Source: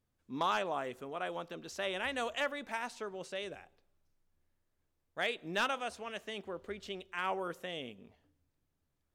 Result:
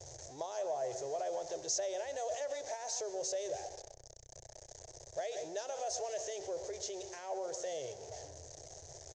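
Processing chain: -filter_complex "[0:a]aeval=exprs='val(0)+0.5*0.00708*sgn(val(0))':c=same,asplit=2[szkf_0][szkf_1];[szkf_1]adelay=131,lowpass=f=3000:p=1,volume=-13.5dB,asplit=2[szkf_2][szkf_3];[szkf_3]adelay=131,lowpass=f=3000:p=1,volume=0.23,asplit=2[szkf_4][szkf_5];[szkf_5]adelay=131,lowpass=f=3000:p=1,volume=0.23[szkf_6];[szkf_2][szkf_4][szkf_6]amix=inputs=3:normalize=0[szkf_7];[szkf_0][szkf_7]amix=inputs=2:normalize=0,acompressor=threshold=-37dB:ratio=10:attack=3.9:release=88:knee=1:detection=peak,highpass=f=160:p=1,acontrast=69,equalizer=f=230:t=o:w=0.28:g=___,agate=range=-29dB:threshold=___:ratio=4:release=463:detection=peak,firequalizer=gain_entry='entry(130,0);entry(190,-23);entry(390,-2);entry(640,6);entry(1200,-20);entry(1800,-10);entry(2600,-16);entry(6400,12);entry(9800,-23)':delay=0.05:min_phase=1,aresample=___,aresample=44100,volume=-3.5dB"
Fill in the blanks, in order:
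-14, -52dB, 22050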